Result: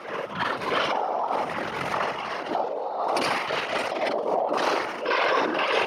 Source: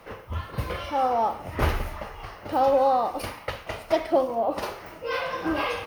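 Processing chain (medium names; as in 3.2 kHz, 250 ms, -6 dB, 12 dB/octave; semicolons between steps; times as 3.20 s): time reversed locally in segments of 44 ms; compressor with a negative ratio -30 dBFS, ratio -1; transient shaper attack -7 dB, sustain +9 dB; whisper effect; band-pass 290–6400 Hz; trim +5.5 dB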